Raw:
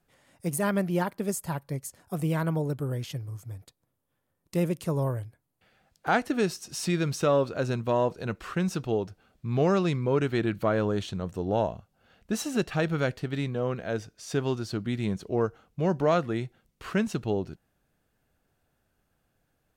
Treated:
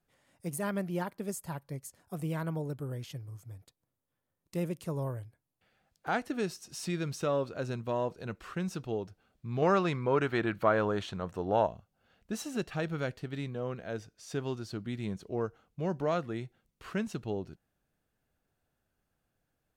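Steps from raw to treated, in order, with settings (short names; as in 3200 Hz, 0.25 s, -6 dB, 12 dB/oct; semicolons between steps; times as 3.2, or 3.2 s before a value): 9.62–11.67 bell 1200 Hz +10 dB 2.6 oct; gain -7 dB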